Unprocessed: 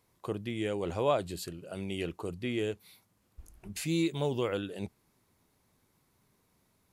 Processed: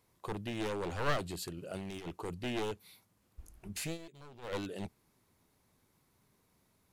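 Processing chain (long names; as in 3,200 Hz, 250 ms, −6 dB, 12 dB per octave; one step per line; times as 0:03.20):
wavefolder on the positive side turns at −31.5 dBFS
0:01.57–0:02.07: compressor whose output falls as the input rises −40 dBFS, ratio −0.5
0:03.85–0:04.55: duck −18 dB, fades 0.13 s
level −1 dB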